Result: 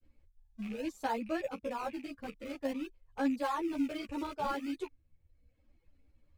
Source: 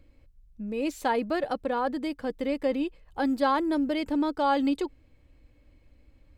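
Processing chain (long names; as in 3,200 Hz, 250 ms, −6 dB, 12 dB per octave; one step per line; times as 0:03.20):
loose part that buzzes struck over −47 dBFS, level −27 dBFS
in parallel at −10 dB: sample-and-hold swept by an LFO 29×, swing 160% 0.54 Hz
on the sum: reverb reduction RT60 0.88 s
granular cloud 100 ms, grains 20 per second, spray 13 ms, pitch spread up and down by 0 semitones
string-ensemble chorus
level −5.5 dB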